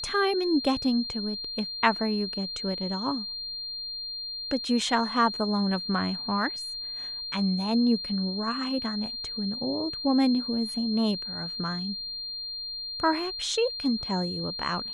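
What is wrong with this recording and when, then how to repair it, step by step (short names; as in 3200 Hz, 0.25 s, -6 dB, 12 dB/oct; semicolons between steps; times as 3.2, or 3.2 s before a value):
tone 4200 Hz -33 dBFS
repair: notch 4200 Hz, Q 30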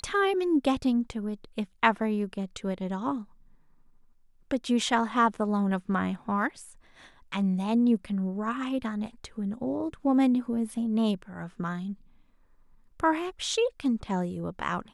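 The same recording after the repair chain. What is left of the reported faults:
none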